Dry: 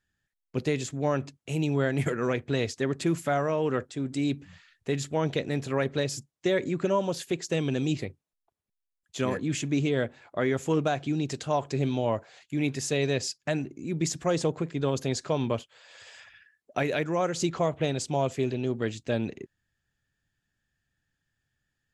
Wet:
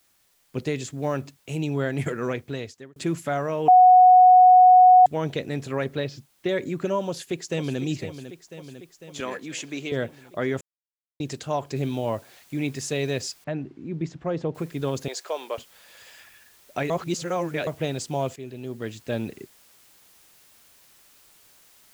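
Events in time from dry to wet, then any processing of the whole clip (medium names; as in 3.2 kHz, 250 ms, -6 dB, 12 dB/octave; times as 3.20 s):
0.91–1.58 s: block-companded coder 7-bit
2.28–2.96 s: fade out
3.68–5.06 s: bleep 735 Hz -9 dBFS
5.95–6.49 s: low-pass 4.3 kHz 24 dB/octave
7.07–7.80 s: echo throw 500 ms, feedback 70%, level -11 dB
9.20–9.92 s: frequency weighting A
10.61–11.20 s: mute
11.76 s: noise floor step -65 dB -56 dB
13.44–14.55 s: tape spacing loss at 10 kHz 32 dB
15.08–15.58 s: high-pass 450 Hz 24 dB/octave
16.90–17.67 s: reverse
18.36–19.16 s: fade in, from -12.5 dB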